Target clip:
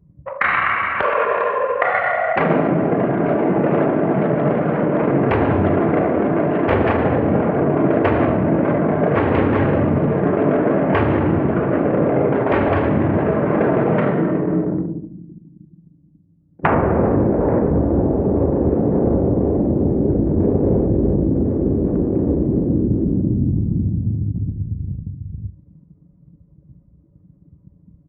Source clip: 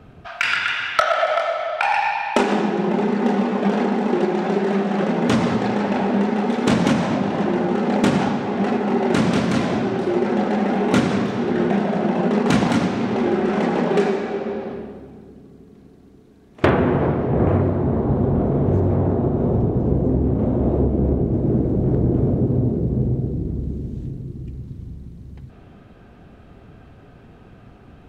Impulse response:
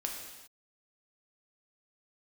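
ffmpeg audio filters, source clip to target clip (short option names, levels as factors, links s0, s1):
-filter_complex "[0:a]bandreject=f=1600:w=27,anlmdn=25.1,highpass=f=98:w=0.5412,highpass=f=98:w=1.3066,bandreject=f=156.2:t=h:w=4,bandreject=f=312.4:t=h:w=4,bandreject=f=468.6:t=h:w=4,bandreject=f=624.8:t=h:w=4,bandreject=f=781:t=h:w=4,bandreject=f=937.2:t=h:w=4,bandreject=f=1093.4:t=h:w=4,bandreject=f=1249.6:t=h:w=4,bandreject=f=1405.8:t=h:w=4,bandreject=f=1562:t=h:w=4,bandreject=f=1718.2:t=h:w=4,bandreject=f=1874.4:t=h:w=4,bandreject=f=2030.6:t=h:w=4,bandreject=f=2186.8:t=h:w=4,bandreject=f=2343:t=h:w=4,afftfilt=real='re*lt(hypot(re,im),0.562)':imag='im*lt(hypot(re,im),0.562)':win_size=1024:overlap=0.75,lowpass=f=3000:w=0.5412,lowpass=f=3000:w=1.3066,tiltshelf=f=640:g=3,asplit=2[s0][s1];[s1]acompressor=threshold=0.0251:ratio=10,volume=1.19[s2];[s0][s2]amix=inputs=2:normalize=0,asetrate=35002,aresample=44100,atempo=1.25992,asplit=2[s3][s4];[s4]aecho=0:1:42|76:0.168|0.168[s5];[s3][s5]amix=inputs=2:normalize=0,volume=1.78"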